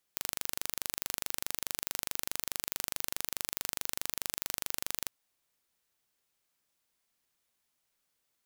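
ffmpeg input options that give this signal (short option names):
-f lavfi -i "aevalsrc='0.531*eq(mod(n,1785),0)':d=4.93:s=44100"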